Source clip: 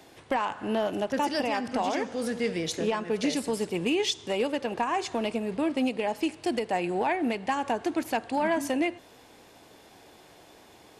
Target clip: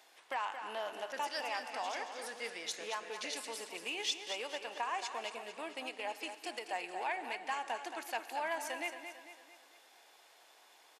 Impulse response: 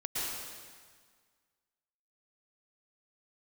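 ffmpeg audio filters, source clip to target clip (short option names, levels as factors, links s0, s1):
-filter_complex "[0:a]highpass=840,aecho=1:1:224|448|672|896|1120:0.355|0.167|0.0784|0.0368|0.0173,asplit=2[s0][s1];[1:a]atrim=start_sample=2205,afade=t=out:st=0.33:d=0.01,atrim=end_sample=14994[s2];[s1][s2]afir=irnorm=-1:irlink=0,volume=0.106[s3];[s0][s3]amix=inputs=2:normalize=0,volume=0.447"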